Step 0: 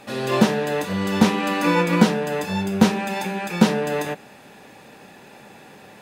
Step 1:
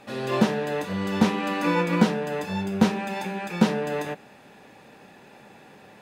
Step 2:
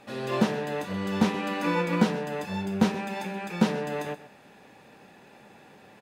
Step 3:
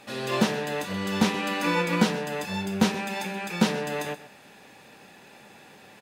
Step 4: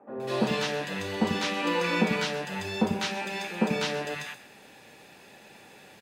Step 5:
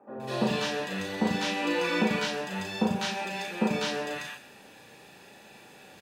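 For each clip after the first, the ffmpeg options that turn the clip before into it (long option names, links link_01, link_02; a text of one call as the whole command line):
ffmpeg -i in.wav -af "highshelf=frequency=5300:gain=-6,volume=-4dB" out.wav
ffmpeg -i in.wav -af "aecho=1:1:128:0.178,volume=-3dB" out.wav
ffmpeg -i in.wav -af "highshelf=frequency=2000:gain=8.5" out.wav
ffmpeg -i in.wav -filter_complex "[0:a]acrossover=split=6800[link_01][link_02];[link_02]acompressor=threshold=-53dB:ratio=4:attack=1:release=60[link_03];[link_01][link_03]amix=inputs=2:normalize=0,acrossover=split=190|1100[link_04][link_05][link_06];[link_04]adelay=90[link_07];[link_06]adelay=200[link_08];[link_07][link_05][link_08]amix=inputs=3:normalize=0" out.wav
ffmpeg -i in.wav -filter_complex "[0:a]bandreject=frequency=2100:width=13,areverse,acompressor=mode=upward:threshold=-48dB:ratio=2.5,areverse,asplit=2[link_01][link_02];[link_02]adelay=37,volume=-3.5dB[link_03];[link_01][link_03]amix=inputs=2:normalize=0,volume=-2dB" out.wav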